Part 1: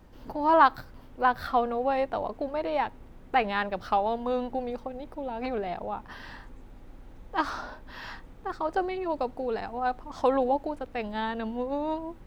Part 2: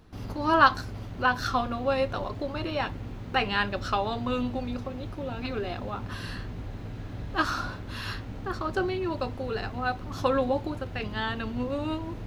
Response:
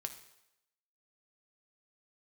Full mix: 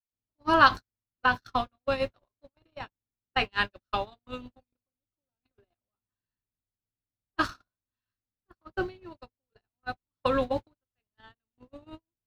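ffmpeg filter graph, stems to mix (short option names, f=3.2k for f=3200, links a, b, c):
-filter_complex "[0:a]aphaser=in_gain=1:out_gain=1:delay=1.3:decay=0.49:speed=0.25:type=triangular,acrossover=split=220[a][b];[b]acompressor=threshold=-38dB:ratio=6[c];[a][c]amix=inputs=2:normalize=0,volume=-7.5dB[d];[1:a]volume=-1dB[e];[d][e]amix=inputs=2:normalize=0,agate=range=-59dB:threshold=-26dB:ratio=16:detection=peak,adynamicequalizer=threshold=0.02:dfrequency=1500:dqfactor=0.7:tfrequency=1500:tqfactor=0.7:attack=5:release=100:ratio=0.375:range=2:mode=boostabove:tftype=highshelf"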